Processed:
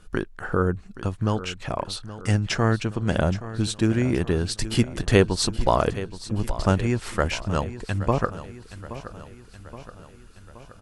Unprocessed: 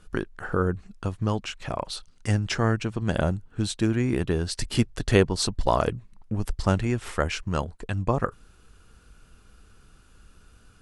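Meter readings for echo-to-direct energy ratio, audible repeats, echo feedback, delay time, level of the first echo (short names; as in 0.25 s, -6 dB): -13.0 dB, 5, 56%, 0.823 s, -14.5 dB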